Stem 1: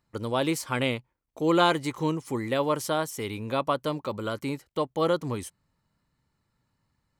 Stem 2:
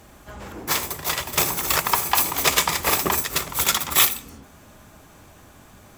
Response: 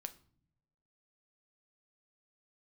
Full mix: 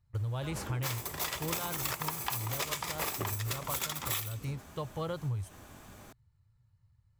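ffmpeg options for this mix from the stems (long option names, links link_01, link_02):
-filter_complex "[0:a]lowshelf=frequency=160:width_type=q:width=3:gain=14,volume=-8.5dB[link_01];[1:a]adelay=150,volume=-3.5dB[link_02];[link_01][link_02]amix=inputs=2:normalize=0,acompressor=threshold=-31dB:ratio=12"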